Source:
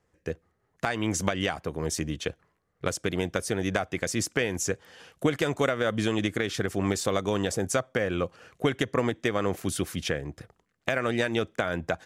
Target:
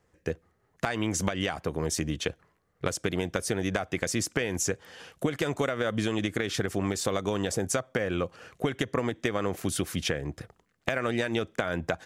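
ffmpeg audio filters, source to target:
-af "acompressor=threshold=-27dB:ratio=6,volume=3dB"

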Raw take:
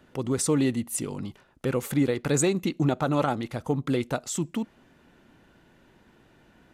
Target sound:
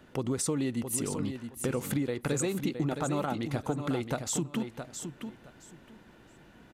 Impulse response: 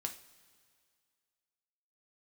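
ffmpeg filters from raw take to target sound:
-filter_complex "[0:a]acompressor=threshold=-29dB:ratio=6,asplit=2[a][b];[b]aecho=0:1:667|1334|2001:0.398|0.0796|0.0159[c];[a][c]amix=inputs=2:normalize=0,volume=1.5dB"

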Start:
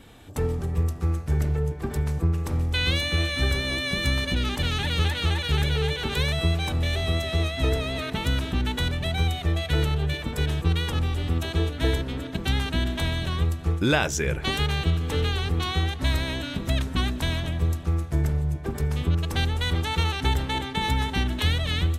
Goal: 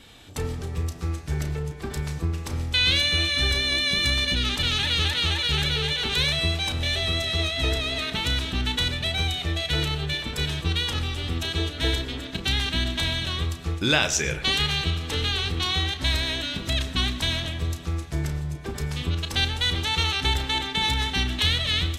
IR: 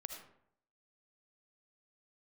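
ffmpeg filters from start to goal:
-filter_complex "[0:a]equalizer=f=4.3k:w=0.54:g=11,asplit=2[a][b];[1:a]atrim=start_sample=2205,adelay=33[c];[b][c]afir=irnorm=-1:irlink=0,volume=-6dB[d];[a][d]amix=inputs=2:normalize=0,volume=-3.5dB"

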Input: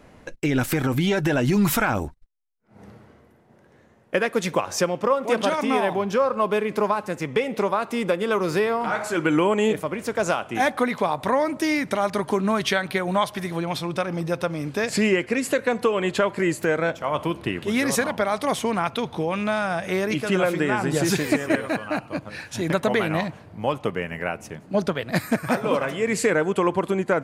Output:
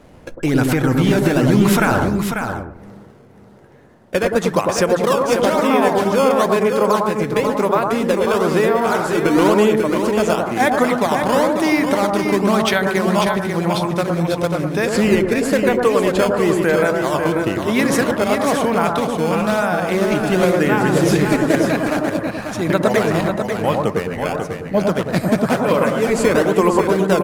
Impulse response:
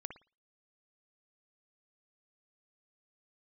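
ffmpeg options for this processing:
-filter_complex "[0:a]asplit=2[a][b];[b]acrusher=samples=13:mix=1:aa=0.000001:lfo=1:lforange=20.8:lforate=1,volume=-3dB[c];[a][c]amix=inputs=2:normalize=0,aecho=1:1:542:0.473[d];[1:a]atrim=start_sample=2205,asetrate=24255,aresample=44100[e];[d][e]afir=irnorm=-1:irlink=0,volume=1.5dB"

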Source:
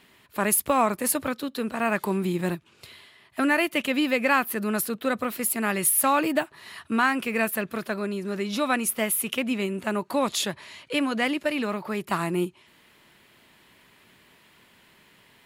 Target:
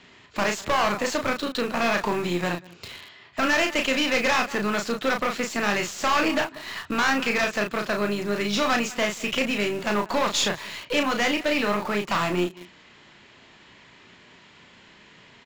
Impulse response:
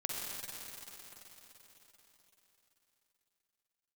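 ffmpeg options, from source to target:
-filter_complex "[0:a]asplit=2[a][b];[b]asetrate=33038,aresample=44100,atempo=1.33484,volume=-16dB[c];[a][c]amix=inputs=2:normalize=0,asplit=2[d][e];[e]adelay=186.6,volume=-25dB,highshelf=f=4k:g=-4.2[f];[d][f]amix=inputs=2:normalize=0,acrossover=split=500|1400[g][h][i];[g]acompressor=threshold=-36dB:ratio=6[j];[j][h][i]amix=inputs=3:normalize=0,asoftclip=type=hard:threshold=-26.5dB,aresample=16000,aresample=44100,asplit=2[k][l];[l]adelay=34,volume=-5dB[m];[k][m]amix=inputs=2:normalize=0,asplit=2[n][o];[o]acrusher=bits=4:dc=4:mix=0:aa=0.000001,volume=-5.5dB[p];[n][p]amix=inputs=2:normalize=0,volume=4.5dB"

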